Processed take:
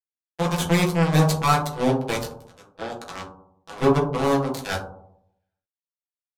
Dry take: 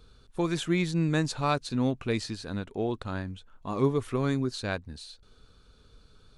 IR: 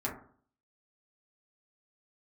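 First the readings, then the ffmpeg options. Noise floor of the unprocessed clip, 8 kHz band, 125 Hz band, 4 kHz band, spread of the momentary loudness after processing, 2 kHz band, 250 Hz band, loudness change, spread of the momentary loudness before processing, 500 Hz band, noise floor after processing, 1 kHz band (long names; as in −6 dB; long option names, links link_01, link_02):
−59 dBFS, +8.5 dB, +6.5 dB, +5.5 dB, 17 LU, +6.5 dB, +4.0 dB, +7.5 dB, 14 LU, +7.0 dB, below −85 dBFS, +10.0 dB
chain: -filter_complex "[0:a]tiltshelf=frequency=730:gain=-6,acrusher=bits=3:mix=0:aa=0.5,aeval=exprs='(tanh(15.8*val(0)+0.7)-tanh(0.7))/15.8':channel_layout=same[link_01];[1:a]atrim=start_sample=2205,asetrate=28224,aresample=44100[link_02];[link_01][link_02]afir=irnorm=-1:irlink=0,volume=5.5dB"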